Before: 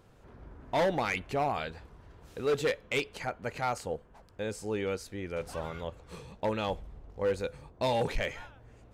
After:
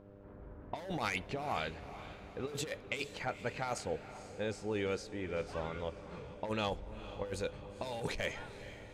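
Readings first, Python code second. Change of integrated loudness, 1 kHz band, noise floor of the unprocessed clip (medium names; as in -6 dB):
-6.5 dB, -6.5 dB, -58 dBFS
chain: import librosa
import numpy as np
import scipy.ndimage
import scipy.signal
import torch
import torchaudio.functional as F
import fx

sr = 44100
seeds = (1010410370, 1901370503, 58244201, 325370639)

y = fx.high_shelf(x, sr, hz=5100.0, db=9.0)
y = fx.env_lowpass(y, sr, base_hz=1500.0, full_db=-24.5)
y = fx.over_compress(y, sr, threshold_db=-31.0, ratio=-0.5)
y = fx.echo_diffused(y, sr, ms=465, feedback_pct=49, wet_db=-13.0)
y = fx.dmg_buzz(y, sr, base_hz=100.0, harmonics=6, level_db=-52.0, tilt_db=-1, odd_only=False)
y = y * 10.0 ** (-4.5 / 20.0)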